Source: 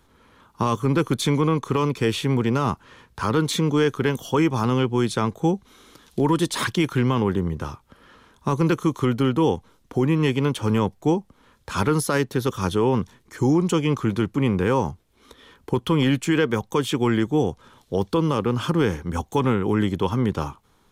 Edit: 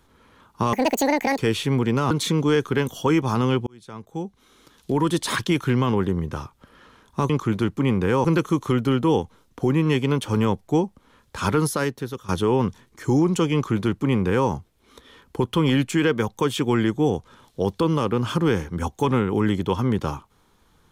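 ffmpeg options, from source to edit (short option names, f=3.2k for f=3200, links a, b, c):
-filter_complex "[0:a]asplit=8[a][b][c][d][e][f][g][h];[a]atrim=end=0.734[i];[b]atrim=start=0.73:end=1.97,asetpts=PTS-STARTPTS,asetrate=83349,aresample=44100,atrim=end_sample=28933,asetpts=PTS-STARTPTS[j];[c]atrim=start=1.966:end=2.692[k];[d]atrim=start=3.388:end=4.95,asetpts=PTS-STARTPTS,afade=t=out:st=1.558:d=0.004:c=hsin[l];[e]atrim=start=4.95:end=8.582,asetpts=PTS-STARTPTS,afade=t=in:d=1.56[m];[f]atrim=start=13.868:end=14.822[n];[g]atrim=start=8.578:end=12.62,asetpts=PTS-STARTPTS,afade=t=out:st=3.402:d=0.64:silence=0.16788[o];[h]atrim=start=12.62,asetpts=PTS-STARTPTS,afade=t=in:d=0.004:c=hsin:silence=0.16788[p];[i][j]acrossfade=d=0.004:c1=hsin:c2=hsin[q];[q][k]acrossfade=d=0.004:c1=hsin:c2=hsin[r];[l][m]concat=n=2:v=0:a=1[s];[r][s]acrossfade=d=0.004:c1=hsin:c2=hsin[t];[t][n]acrossfade=d=0.004:c1=hsin:c2=hsin[u];[o][p]concat=n=2:v=0:a=1[v];[u][v]acrossfade=d=0.004:c1=hsin:c2=hsin"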